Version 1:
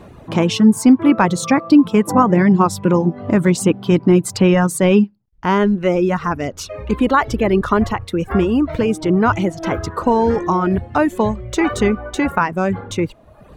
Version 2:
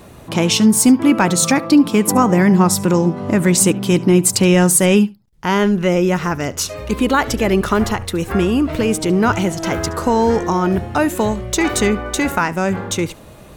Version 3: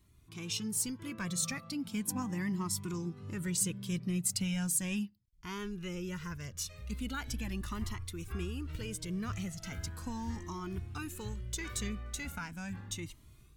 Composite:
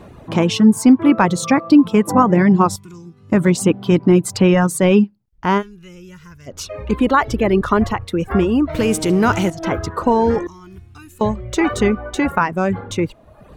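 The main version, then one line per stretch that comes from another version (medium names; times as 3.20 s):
1
2.76–3.32 s: from 3
5.60–6.49 s: from 3, crossfade 0.06 s
8.75–9.50 s: from 2
10.47–11.21 s: from 3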